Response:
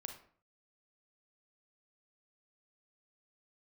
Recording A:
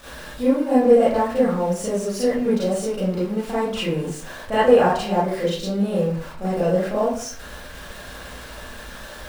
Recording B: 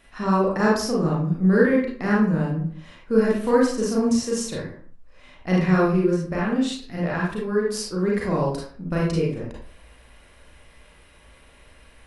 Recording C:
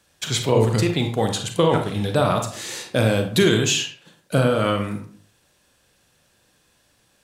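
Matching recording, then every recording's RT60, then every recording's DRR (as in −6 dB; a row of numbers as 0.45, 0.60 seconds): C; 0.50, 0.50, 0.50 seconds; −10.5, −5.0, 4.5 decibels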